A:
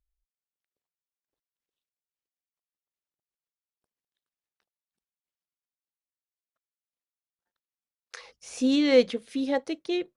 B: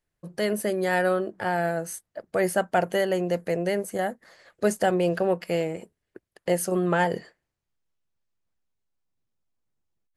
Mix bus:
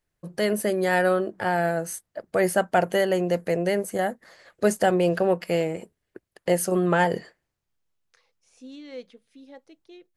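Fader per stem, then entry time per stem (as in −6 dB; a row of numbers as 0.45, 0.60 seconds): −19.5, +2.0 decibels; 0.00, 0.00 seconds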